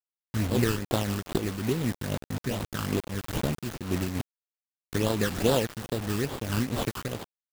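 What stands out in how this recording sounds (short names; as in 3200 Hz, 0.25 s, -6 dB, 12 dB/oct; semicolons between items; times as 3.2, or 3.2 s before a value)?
aliases and images of a low sample rate 2200 Hz, jitter 20%; phasing stages 12, 2.4 Hz, lowest notch 640–2100 Hz; a quantiser's noise floor 6-bit, dither none; noise-modulated level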